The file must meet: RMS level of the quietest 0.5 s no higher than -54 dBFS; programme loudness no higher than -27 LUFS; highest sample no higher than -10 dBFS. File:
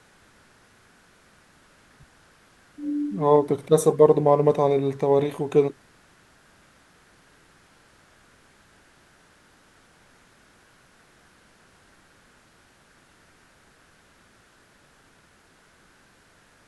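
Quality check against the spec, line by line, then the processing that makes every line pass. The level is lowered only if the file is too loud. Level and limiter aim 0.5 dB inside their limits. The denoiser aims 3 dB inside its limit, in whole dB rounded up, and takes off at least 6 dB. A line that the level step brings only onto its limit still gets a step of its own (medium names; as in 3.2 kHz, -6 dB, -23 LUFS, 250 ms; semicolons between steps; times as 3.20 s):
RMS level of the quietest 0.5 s -58 dBFS: pass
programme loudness -21.0 LUFS: fail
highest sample -3.5 dBFS: fail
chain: trim -6.5 dB; peak limiter -10.5 dBFS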